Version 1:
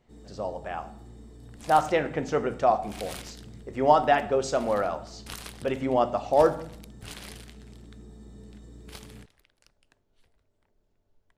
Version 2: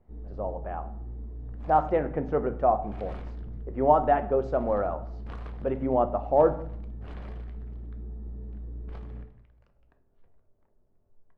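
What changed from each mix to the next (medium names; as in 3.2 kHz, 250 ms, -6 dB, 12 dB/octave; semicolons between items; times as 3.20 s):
first sound: remove high-pass 110 Hz 12 dB/octave; second sound: send on; master: add low-pass 1.1 kHz 12 dB/octave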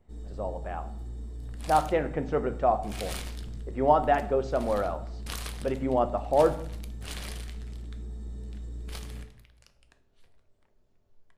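speech: add tape spacing loss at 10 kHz 29 dB; master: remove low-pass 1.1 kHz 12 dB/octave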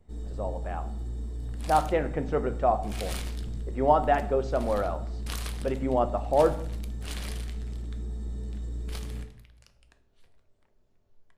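first sound +4.0 dB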